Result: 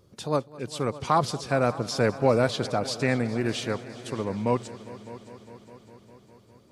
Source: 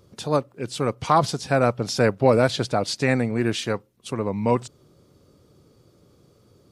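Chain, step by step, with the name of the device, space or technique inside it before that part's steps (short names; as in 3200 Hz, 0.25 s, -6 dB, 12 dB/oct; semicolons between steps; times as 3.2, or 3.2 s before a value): multi-head tape echo (multi-head echo 0.203 s, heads all three, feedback 62%, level -21 dB; wow and flutter 24 cents); gain -4 dB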